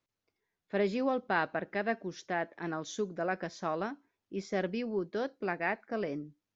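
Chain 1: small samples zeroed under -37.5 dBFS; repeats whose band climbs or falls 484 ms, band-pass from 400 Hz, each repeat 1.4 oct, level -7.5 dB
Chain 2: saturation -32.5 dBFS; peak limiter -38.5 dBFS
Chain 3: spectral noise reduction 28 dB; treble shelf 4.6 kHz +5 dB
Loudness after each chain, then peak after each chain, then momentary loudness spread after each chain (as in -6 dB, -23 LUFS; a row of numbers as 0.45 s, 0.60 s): -34.5 LUFS, -45.0 LUFS, -34.5 LUFS; -15.0 dBFS, -38.5 dBFS, -14.5 dBFS; 8 LU, 4 LU, 7 LU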